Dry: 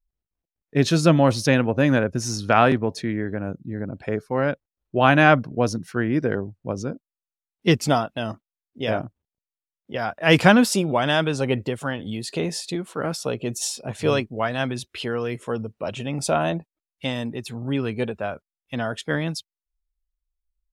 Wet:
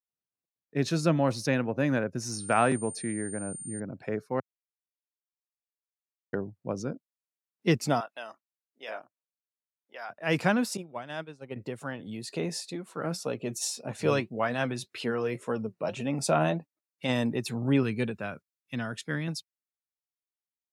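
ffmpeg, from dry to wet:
-filter_complex "[0:a]asettb=1/sr,asplit=3[a][b][c];[a]atrim=end=2.324[d];[b]atrim=start=2.32:end=3.8,asetpts=PTS-STARTPTS,afade=t=in:d=0.004:c=qsin,afade=t=out:st=1.476:d=0.004:c=qsin,aeval=exprs='val(0)+0.0251*sin(2*PI*9000*n/s)':c=same[e];[c]atrim=start=3.796[f];[d][e]acrossfade=d=0.004:c1=hsin:c2=qsin[g];[g][f]acrossfade=d=0.004:c1=qsin:c2=hsin,asettb=1/sr,asplit=3[h][i][j];[h]atrim=end=8.004[k];[i]atrim=start=8:end=10.1,asetpts=PTS-STARTPTS,afade=t=in:d=0.004:c=qsin,afade=t=out:st=2.096:d=0.004:c=qsin,highpass=740[l];[j]atrim=start=10.096[m];[k][l]acrossfade=d=0.004:c1=hsin:c2=qsin[n];[n][m]acrossfade=d=0.004:c1=qsin:c2=hsin,asettb=1/sr,asplit=3[o][p][q];[o]atrim=end=10.774[r];[p]atrim=start=10.77:end=11.56,asetpts=PTS-STARTPTS,afade=t=in:d=0.004:c=qsin,afade=t=out:st=0.786:d=0.004:c=qsin,agate=range=-33dB:threshold=-15dB:ratio=3:release=100:detection=peak[s];[q]atrim=start=11.556[t];[r][s]acrossfade=d=0.004:c1=hsin:c2=qsin[u];[u][t]acrossfade=d=0.004:c1=qsin:c2=hsin,asplit=3[v][w][x];[v]afade=t=out:st=12.63:d=0.02[y];[w]flanger=delay=3.3:depth=3.4:regen=68:speed=1.8:shape=triangular,afade=t=in:st=12.63:d=0.02,afade=t=out:st=17.08:d=0.02[z];[x]afade=t=in:st=17.08:d=0.02[aa];[y][z][aa]amix=inputs=3:normalize=0,asettb=1/sr,asplit=3[ab][ac][ad];[ab]atrim=end=17.834[ae];[ac]atrim=start=17.83:end=19.28,asetpts=PTS-STARTPTS,afade=t=in:d=0.004:c=qsin,afade=t=out:st=1.446:d=0.004:c=qsin,equalizer=f=670:w=0.8:g=-10.5[af];[ad]atrim=start=19.276[ag];[ae][af]acrossfade=d=0.004:c1=hsin:c2=qsin[ah];[ah][ag]acrossfade=d=0.004:c1=qsin:c2=hsin,asplit=3[ai][aj][ak];[ai]atrim=end=4.4,asetpts=PTS-STARTPTS,afade=t=out:st=4.396:d=0.004:c=hsin[al];[aj]atrim=start=4.4:end=6.33,asetpts=PTS-STARTPTS,volume=0[am];[ak]atrim=start=6.33,asetpts=PTS-STARTPTS,afade=t=in:d=0.004:c=hsin[an];[al][am][an]concat=n=3:v=0:a=1,highpass=f=110:w=0.5412,highpass=f=110:w=1.3066,equalizer=f=3.2k:t=o:w=0.23:g=-7.5,dynaudnorm=f=220:g=21:m=11.5dB,volume=-8.5dB"

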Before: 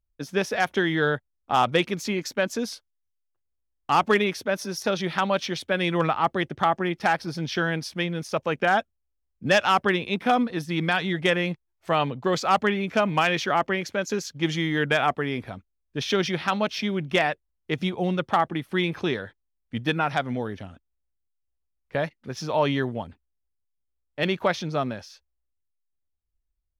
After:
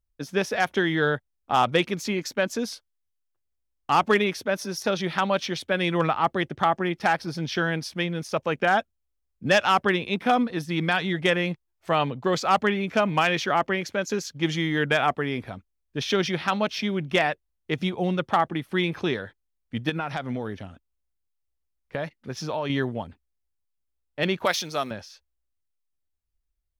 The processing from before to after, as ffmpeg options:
-filter_complex "[0:a]asettb=1/sr,asplit=3[a][b][c];[a]atrim=end=19.894[d];[b]atrim=start=19.89:end=22.7,asetpts=PTS-STARTPTS,afade=t=in:d=0.004:c=qsin,afade=t=out:st=2.806:d=0.004:c=qsin,acompressor=threshold=-24dB:ratio=6:attack=3.2:release=140:knee=1:detection=peak[e];[c]atrim=start=22.696[f];[d][e]acrossfade=d=0.004:c1=hsin:c2=qsin[g];[g][f]acrossfade=d=0.004:c1=qsin:c2=hsin,asettb=1/sr,asplit=3[h][i][j];[h]atrim=end=24.454[k];[i]atrim=start=24.45:end=24.91,asetpts=PTS-STARTPTS,afade=t=in:d=0.004:c=qsin,afade=t=out:st=0.456:d=0.004:c=qsin,aemphasis=mode=production:type=riaa[l];[j]atrim=start=24.906[m];[k][l]acrossfade=d=0.004:c1=hsin:c2=qsin[n];[n][m]acrossfade=d=0.004:c1=qsin:c2=hsin"

